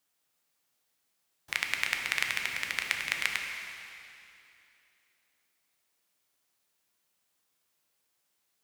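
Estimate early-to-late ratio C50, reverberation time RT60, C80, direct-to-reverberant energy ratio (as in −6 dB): 3.5 dB, 2.8 s, 4.5 dB, 2.0 dB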